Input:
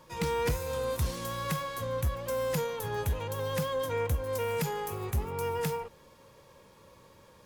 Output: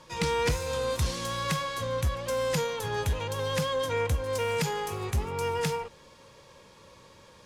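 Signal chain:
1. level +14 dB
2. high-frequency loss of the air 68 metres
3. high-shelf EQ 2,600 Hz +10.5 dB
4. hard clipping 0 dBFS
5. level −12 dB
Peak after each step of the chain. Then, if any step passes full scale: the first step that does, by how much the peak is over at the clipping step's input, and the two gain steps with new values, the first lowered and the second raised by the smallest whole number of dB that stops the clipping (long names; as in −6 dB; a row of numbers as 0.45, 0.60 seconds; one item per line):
−8.0, −8.0, −3.5, −3.5, −15.5 dBFS
no step passes full scale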